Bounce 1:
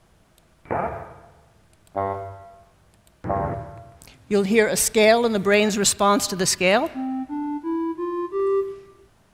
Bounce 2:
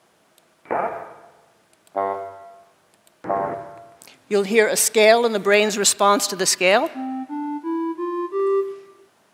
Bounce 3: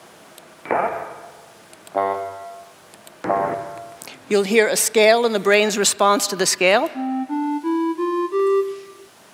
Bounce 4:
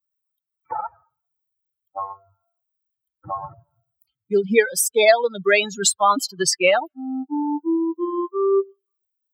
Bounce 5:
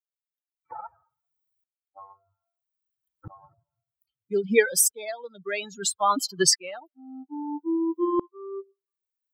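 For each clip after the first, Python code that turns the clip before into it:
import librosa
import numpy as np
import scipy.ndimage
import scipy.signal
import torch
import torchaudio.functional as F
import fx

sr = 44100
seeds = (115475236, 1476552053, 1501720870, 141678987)

y1 = scipy.signal.sosfilt(scipy.signal.butter(2, 290.0, 'highpass', fs=sr, output='sos'), x)
y1 = y1 * 10.0 ** (2.5 / 20.0)
y2 = fx.band_squash(y1, sr, depth_pct=40)
y2 = y2 * 10.0 ** (2.0 / 20.0)
y3 = fx.bin_expand(y2, sr, power=3.0)
y3 = y3 * 10.0 ** (3.5 / 20.0)
y4 = fx.tremolo_decay(y3, sr, direction='swelling', hz=0.61, depth_db=25)
y4 = y4 * 10.0 ** (2.0 / 20.0)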